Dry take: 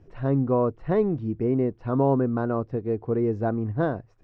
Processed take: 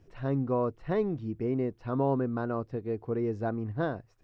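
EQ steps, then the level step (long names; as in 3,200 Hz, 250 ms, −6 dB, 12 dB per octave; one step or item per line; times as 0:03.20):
high-shelf EQ 2,300 Hz +11 dB
−6.5 dB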